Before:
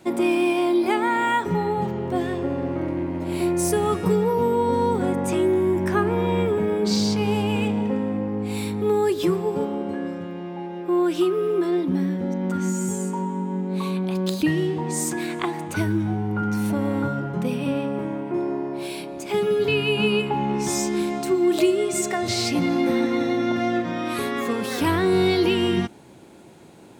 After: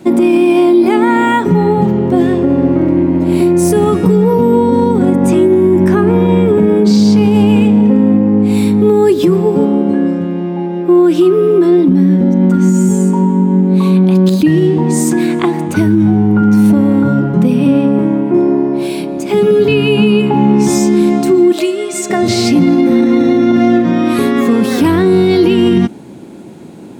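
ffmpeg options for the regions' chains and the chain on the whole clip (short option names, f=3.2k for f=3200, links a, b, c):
-filter_complex "[0:a]asettb=1/sr,asplit=3[a][b][c];[a]atrim=end=21.524[d];[b]atrim=start=21.52:end=22.1,asetpts=PTS-STARTPTS,afade=t=in:d=0.004:c=qsin,afade=t=out:st=0.576:d=0.004:c=qsin,highpass=f=1.1k:p=1,highshelf=f=12k:g=-6[e];[c]atrim=start=22.096[f];[d][e]acrossfade=d=0.004:c1=hsin:c2=qsin[g];[g][f]acrossfade=d=0.004:c1=qsin:c2=hsin,equalizer=f=230:t=o:w=1.7:g=11,alimiter=level_in=8.5dB:limit=-1dB:release=50:level=0:latency=1,volume=-1dB"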